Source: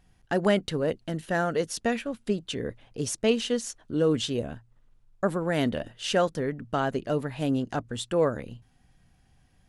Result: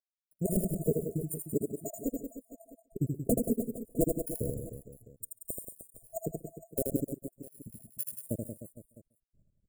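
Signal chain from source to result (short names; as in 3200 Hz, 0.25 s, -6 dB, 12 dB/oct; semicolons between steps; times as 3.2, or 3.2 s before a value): random spectral dropouts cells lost 83%; expander -53 dBFS; high shelf 6700 Hz +9 dB; in parallel at -1.5 dB: compressor 20:1, threshold -39 dBFS, peak gain reduction 21 dB; on the sum: LFO low-pass sine 0.28 Hz 900–3200 Hz; sample-rate reducer 9000 Hz, jitter 0%; wrapped overs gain 16 dB; outdoor echo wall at 24 m, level -23 dB; formant shift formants -3 st; brick-wall FIR band-stop 690–6800 Hz; on a send: reverse bouncing-ball echo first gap 80 ms, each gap 1.25×, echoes 5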